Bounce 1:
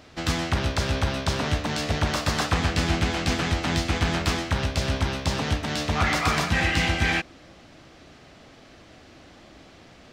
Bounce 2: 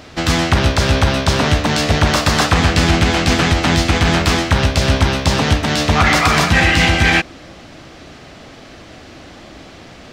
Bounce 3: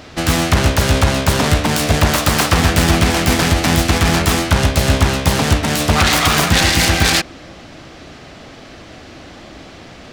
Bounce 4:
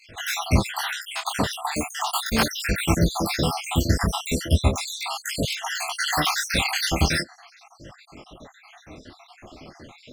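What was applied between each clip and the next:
maximiser +12.5 dB; gain -1 dB
self-modulated delay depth 0.25 ms; gain +1 dB
random spectral dropouts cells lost 74%; detuned doubles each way 13 cents

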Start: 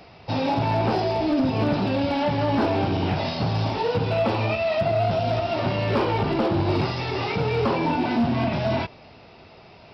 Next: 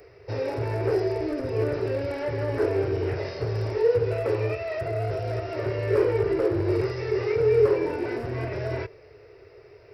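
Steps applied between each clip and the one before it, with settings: EQ curve 120 Hz 0 dB, 210 Hz -24 dB, 420 Hz +12 dB, 780 Hz -12 dB, 1900 Hz +2 dB, 3400 Hz -16 dB, 8300 Hz +9 dB; gain -3 dB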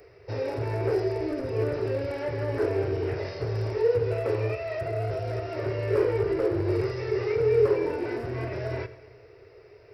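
Schroeder reverb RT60 1.5 s, combs from 28 ms, DRR 14 dB; gain -2 dB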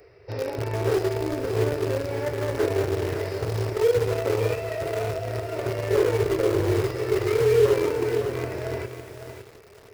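in parallel at -9.5 dB: bit-crush 4-bit; on the sum: lo-fi delay 0.558 s, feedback 35%, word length 7-bit, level -8 dB

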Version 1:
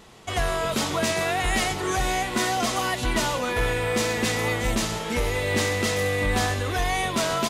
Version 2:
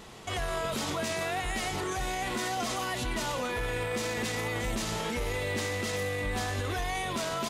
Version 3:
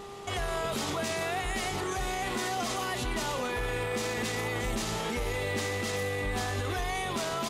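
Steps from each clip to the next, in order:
limiter -25.5 dBFS, peak gain reduction 11.5 dB; gain +1.5 dB
buzz 400 Hz, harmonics 3, -45 dBFS -4 dB/oct

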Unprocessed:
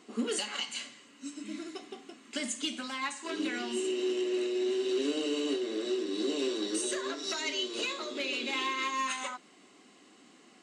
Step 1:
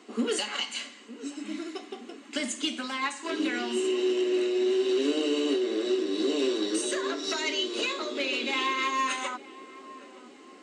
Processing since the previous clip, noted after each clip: HPF 210 Hz 24 dB/oct; high shelf 6000 Hz -6 dB; darkening echo 0.913 s, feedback 63%, low-pass 1100 Hz, level -16 dB; gain +5 dB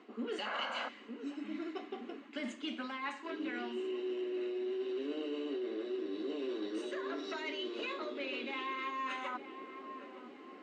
LPF 2600 Hz 12 dB/oct; reverse; compressor 4:1, threshold -36 dBFS, peak gain reduction 12 dB; reverse; painted sound noise, 0.45–0.89, 490–1700 Hz -39 dBFS; gain -1.5 dB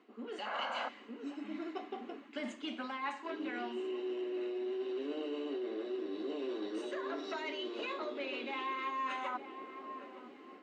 dynamic EQ 790 Hz, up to +6 dB, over -55 dBFS, Q 1.4; AGC gain up to 5.5 dB; gain -7 dB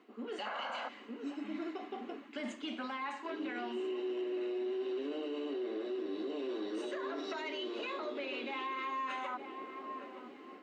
limiter -33 dBFS, peak gain reduction 6.5 dB; gain +2 dB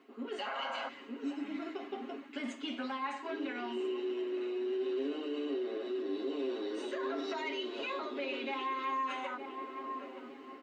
comb 7.4 ms

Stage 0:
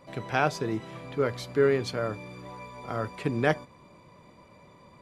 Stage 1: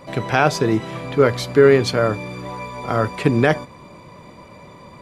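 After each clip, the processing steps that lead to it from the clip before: maximiser +13 dB; gain -1 dB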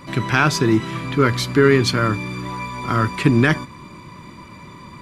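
band shelf 600 Hz -11.5 dB 1.1 oct; in parallel at -9 dB: soft clip -19.5 dBFS, distortion -7 dB; on the sum: gain +1.5 dB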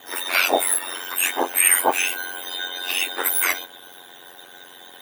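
spectrum mirrored in octaves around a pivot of 1900 Hz; ring modulator 45 Hz; gain +5 dB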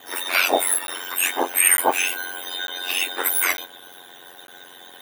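crackling interface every 0.90 s zero, from 0.87

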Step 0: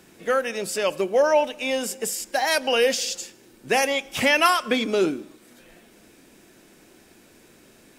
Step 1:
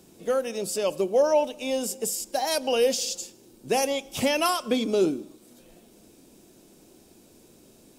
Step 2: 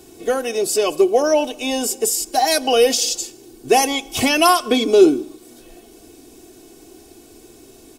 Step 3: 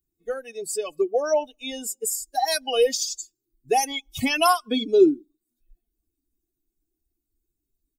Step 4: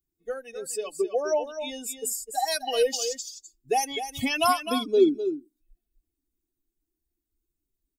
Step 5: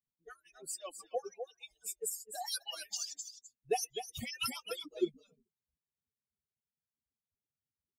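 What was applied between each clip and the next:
bell 1800 Hz -14 dB 1.3 oct
comb 2.7 ms, depth 77%; gain +7.5 dB
per-bin expansion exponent 2; gain -3 dB
echo 0.255 s -9.5 dB; gain -3.5 dB
median-filter separation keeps percussive; mismatched tape noise reduction decoder only; gain -6 dB

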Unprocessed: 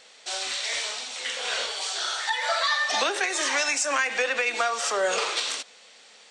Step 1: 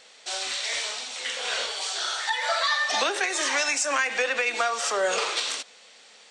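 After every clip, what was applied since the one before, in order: nothing audible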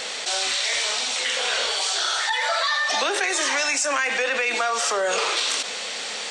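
fast leveller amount 70%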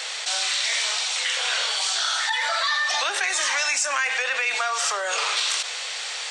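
HPF 810 Hz 12 dB/oct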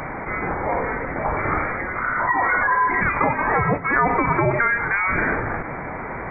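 inverted band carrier 2800 Hz; gain +6 dB

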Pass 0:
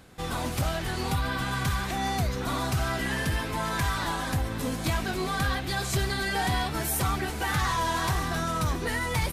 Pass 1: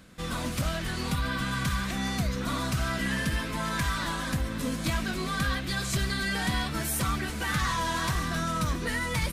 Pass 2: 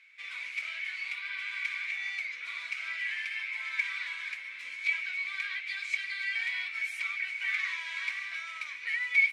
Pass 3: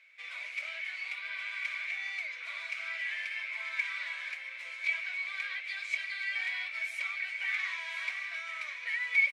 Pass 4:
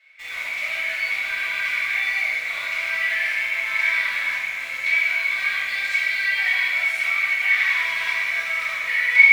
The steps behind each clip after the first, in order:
thirty-one-band EQ 100 Hz -9 dB, 200 Hz +5 dB, 400 Hz -7 dB, 800 Hz -11 dB, 12500 Hz -4 dB
ladder band-pass 2300 Hz, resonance 90%; gain +5 dB
resonant high-pass 590 Hz, resonance Q 6.2; echo 1.048 s -11 dB; gain -2.5 dB
in parallel at -3.5 dB: sample gate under -42 dBFS; on the sum: reverb RT60 2.6 s, pre-delay 3 ms, DRR -11.5 dB; gain -4 dB

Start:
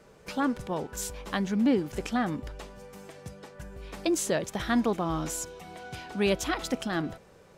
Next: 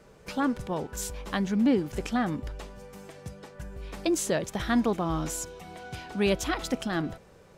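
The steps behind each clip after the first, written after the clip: low shelf 130 Hz +4.5 dB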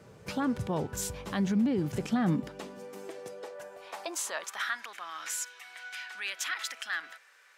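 limiter -22.5 dBFS, peak gain reduction 9 dB; high-pass sweep 99 Hz -> 1700 Hz, 1.68–4.87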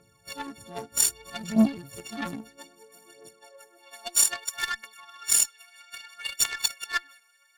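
frequency quantiser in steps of 4 st; phaser 0.62 Hz, delay 4.5 ms, feedback 65%; added harmonics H 7 -19 dB, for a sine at -6.5 dBFS

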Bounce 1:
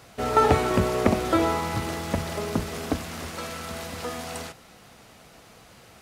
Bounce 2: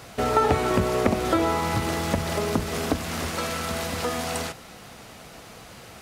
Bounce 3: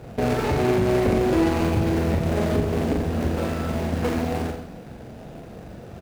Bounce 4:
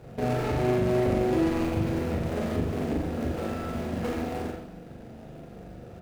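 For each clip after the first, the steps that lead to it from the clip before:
compressor 2:1, threshold -30 dBFS, peak gain reduction 9 dB; gain +6.5 dB
median filter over 41 samples; limiter -22 dBFS, peak gain reduction 11 dB; reverse bouncing-ball echo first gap 40 ms, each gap 1.15×, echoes 5; gain +7 dB
reverb, pre-delay 40 ms, DRR 3.5 dB; gain -7.5 dB

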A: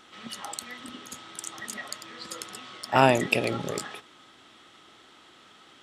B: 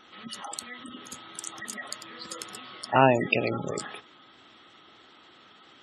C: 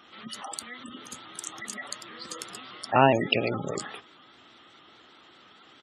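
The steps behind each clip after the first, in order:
spectral gate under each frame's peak -20 dB strong
downsampling 32000 Hz; shaped vibrato saw up 4.8 Hz, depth 100 cents

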